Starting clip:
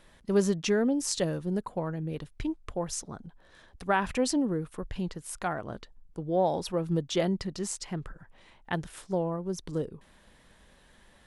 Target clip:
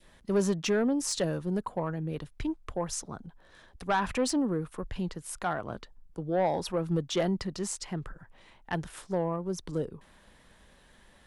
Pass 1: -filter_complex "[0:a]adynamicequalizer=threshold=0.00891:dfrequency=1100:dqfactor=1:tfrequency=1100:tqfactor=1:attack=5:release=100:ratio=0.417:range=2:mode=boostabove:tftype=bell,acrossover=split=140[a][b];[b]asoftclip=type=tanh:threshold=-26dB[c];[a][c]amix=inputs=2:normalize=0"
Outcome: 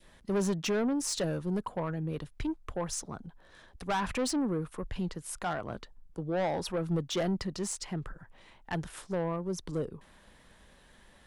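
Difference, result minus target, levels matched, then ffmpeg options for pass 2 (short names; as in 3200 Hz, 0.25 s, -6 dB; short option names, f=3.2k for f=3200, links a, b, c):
soft clip: distortion +6 dB
-filter_complex "[0:a]adynamicequalizer=threshold=0.00891:dfrequency=1100:dqfactor=1:tfrequency=1100:tqfactor=1:attack=5:release=100:ratio=0.417:range=2:mode=boostabove:tftype=bell,acrossover=split=140[a][b];[b]asoftclip=type=tanh:threshold=-19.5dB[c];[a][c]amix=inputs=2:normalize=0"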